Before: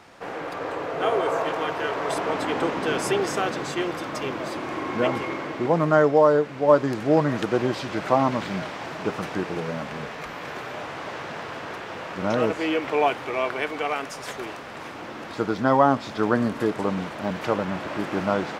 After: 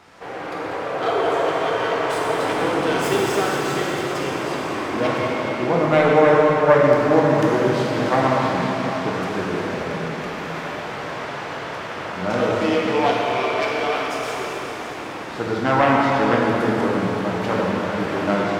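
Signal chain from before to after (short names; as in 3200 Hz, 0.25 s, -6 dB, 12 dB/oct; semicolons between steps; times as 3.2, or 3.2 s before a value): self-modulated delay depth 0.2 ms; plate-style reverb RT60 4.3 s, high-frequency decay 0.95×, DRR -4.5 dB; gain -1 dB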